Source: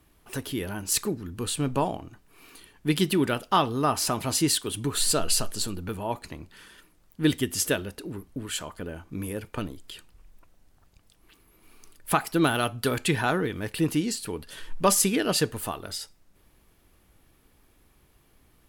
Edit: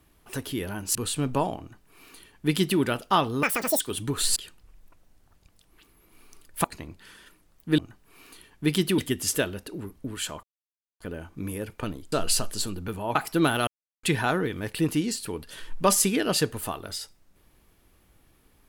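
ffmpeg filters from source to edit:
-filter_complex "[0:a]asplit=13[a][b][c][d][e][f][g][h][i][j][k][l][m];[a]atrim=end=0.952[n];[b]atrim=start=1.358:end=3.844[o];[c]atrim=start=3.84:end=4.57,asetpts=PTS-STARTPTS,asetrate=86436,aresample=44100[p];[d]atrim=start=4.566:end=5.132[q];[e]atrim=start=9.868:end=12.152[r];[f]atrim=start=6.158:end=7.302[s];[g]atrim=start=2.008:end=3.212[t];[h]atrim=start=7.298:end=8.75,asetpts=PTS-STARTPTS,afade=t=out:st=1.448:d=0.004:c=hsin,apad=pad_dur=0.57[u];[i]atrim=start=8.75:end=9.872,asetpts=PTS-STARTPTS,afade=t=in:d=0.004:c=hsin[v];[j]atrim=start=5.128:end=6.162[w];[k]atrim=start=12.148:end=12.67,asetpts=PTS-STARTPTS,afade=t=out:st=0.518:d=0.004:c=hsin[x];[l]atrim=start=12.67:end=13.03,asetpts=PTS-STARTPTS,volume=0[y];[m]atrim=start=13.03,asetpts=PTS-STARTPTS,afade=t=in:d=0.004:c=hsin[z];[n][o]acrossfade=d=0.004:c1=hsin:c2=hsin[aa];[aa][p]acrossfade=d=0.004:c1=hsin:c2=hsin[ab];[ab][q]acrossfade=d=0.004:c1=hsin:c2=hsin[ac];[ac][r]acrossfade=d=0.004:c1=hsin:c2=hsin[ad];[ad][s]acrossfade=d=0.004:c1=hsin:c2=hsin[ae];[ae][t]acrossfade=d=0.004:c1=hsin:c2=hsin[af];[u][v]concat=n=2:v=0:a=1[ag];[af][ag]acrossfade=d=0.004:c1=hsin:c2=hsin[ah];[ah][w]acrossfade=d=0.004:c1=hsin:c2=hsin[ai];[x][y][z]concat=n=3:v=0:a=1[aj];[ai][aj]acrossfade=d=0.004:c1=hsin:c2=hsin"

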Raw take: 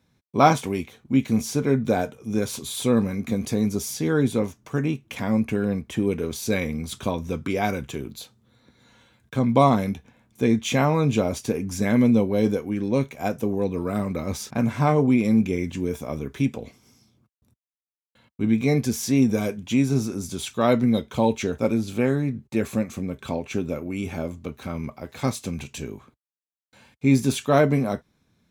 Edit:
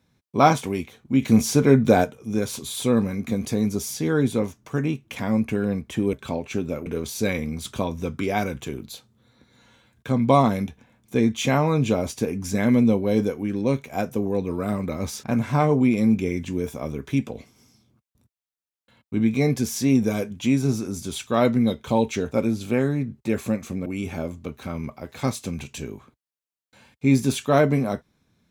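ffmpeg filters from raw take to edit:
-filter_complex "[0:a]asplit=6[a][b][c][d][e][f];[a]atrim=end=1.222[g];[b]atrim=start=1.218:end=2.042,asetpts=PTS-STARTPTS,volume=5.5dB[h];[c]atrim=start=2.038:end=6.132[i];[d]atrim=start=23.128:end=23.862[j];[e]atrim=start=6.128:end=23.132[k];[f]atrim=start=23.858[l];[g][h]acrossfade=d=0.004:c1=hsin:c2=hsin[m];[m][i]acrossfade=d=0.004:c1=hsin:c2=hsin[n];[n][j]acrossfade=d=0.004:c1=hsin:c2=hsin[o];[o][k]acrossfade=d=0.004:c1=hsin:c2=hsin[p];[p][l]acrossfade=d=0.004:c1=hsin:c2=hsin"

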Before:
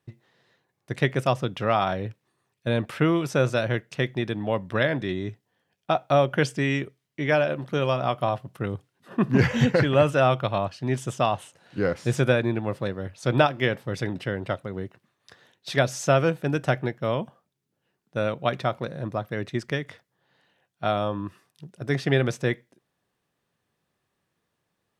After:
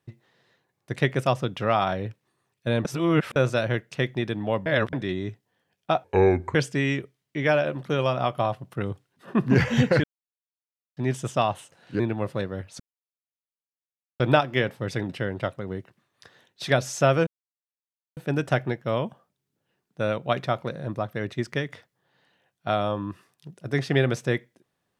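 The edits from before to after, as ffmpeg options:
-filter_complex "[0:a]asplit=12[a][b][c][d][e][f][g][h][i][j][k][l];[a]atrim=end=2.852[m];[b]atrim=start=2.848:end=3.362,asetpts=PTS-STARTPTS,areverse[n];[c]atrim=start=3.358:end=4.662[o];[d]atrim=start=4.658:end=4.932,asetpts=PTS-STARTPTS,areverse[p];[e]atrim=start=4.928:end=6.044[q];[f]atrim=start=6.04:end=6.38,asetpts=PTS-STARTPTS,asetrate=29547,aresample=44100,atrim=end_sample=22379,asetpts=PTS-STARTPTS[r];[g]atrim=start=6.376:end=9.87,asetpts=PTS-STARTPTS,afade=t=out:st=3.49:d=0.004:c=hsin[s];[h]atrim=start=9.87:end=10.8,asetpts=PTS-STARTPTS,volume=0[t];[i]atrim=start=10.8:end=11.832,asetpts=PTS-STARTPTS,afade=t=in:d=0.004:c=hsin[u];[j]atrim=start=12.458:end=13.26,asetpts=PTS-STARTPTS,afade=t=out:st=0.798:d=0.004:c=hsin,apad=pad_dur=1.4[v];[k]atrim=start=13.26:end=16.33,asetpts=PTS-STARTPTS,afade=t=in:d=0.004:c=hsin,afade=t=out:st=3.066:d=0.004:c=hsin,apad=pad_dur=0.9[w];[l]atrim=start=16.33,asetpts=PTS-STARTPTS,afade=t=in:d=0.004:c=hsin[x];[m][n]acrossfade=d=0.004:c1=hsin:c2=hsin[y];[y][o]acrossfade=d=0.004:c1=hsin:c2=hsin[z];[z][p]acrossfade=d=0.004:c1=hsin:c2=hsin[aa];[aa][q]acrossfade=d=0.004:c1=hsin:c2=hsin[ab];[ab][r]acrossfade=d=0.004:c1=hsin:c2=hsin[ac];[s][t][u]concat=n=3:v=0:a=1[ad];[ac][ad]acrossfade=d=0.004:c1=hsin:c2=hsin[ae];[v][w][x]concat=n=3:v=0:a=1[af];[ae][af]acrossfade=d=0.004:c1=hsin:c2=hsin"

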